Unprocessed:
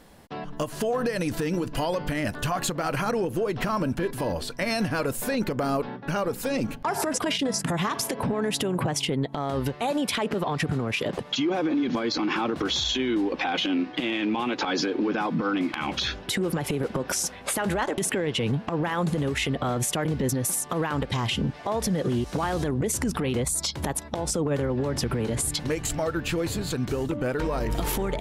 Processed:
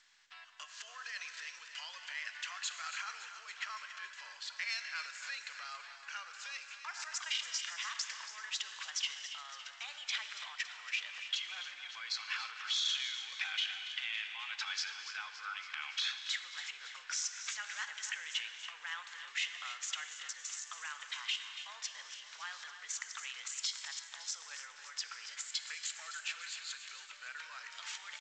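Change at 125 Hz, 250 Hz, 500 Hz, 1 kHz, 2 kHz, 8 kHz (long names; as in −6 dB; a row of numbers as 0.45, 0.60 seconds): below −40 dB, below −40 dB, below −40 dB, −18.0 dB, −7.0 dB, −10.5 dB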